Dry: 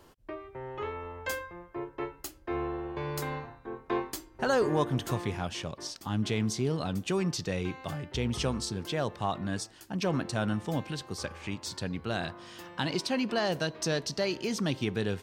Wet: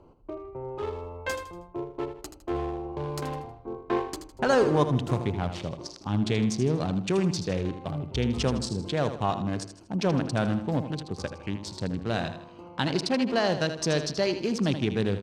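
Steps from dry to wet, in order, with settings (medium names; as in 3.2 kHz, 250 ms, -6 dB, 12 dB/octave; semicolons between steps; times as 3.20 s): local Wiener filter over 25 samples; low-pass 9.5 kHz 12 dB/octave; feedback delay 79 ms, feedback 40%, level -10 dB; trim +4.5 dB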